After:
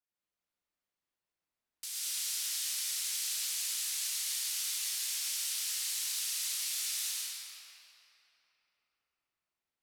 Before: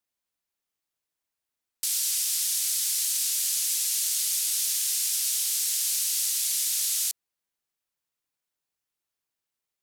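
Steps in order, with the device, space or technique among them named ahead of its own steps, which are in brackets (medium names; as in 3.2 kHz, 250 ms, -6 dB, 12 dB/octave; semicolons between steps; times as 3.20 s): swimming-pool hall (reverberation RT60 3.8 s, pre-delay 96 ms, DRR -7 dB; treble shelf 5.4 kHz -7.5 dB); trim -8.5 dB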